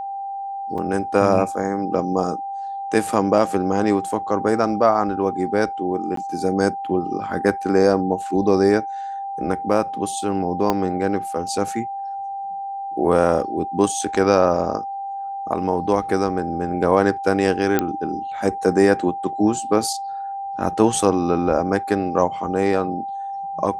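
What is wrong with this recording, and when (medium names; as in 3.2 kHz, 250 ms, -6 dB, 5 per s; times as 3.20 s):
whine 790 Hz -26 dBFS
0.78 s: dropout 3.8 ms
6.16–6.17 s: dropout 13 ms
10.70 s: pop -6 dBFS
17.79 s: pop -5 dBFS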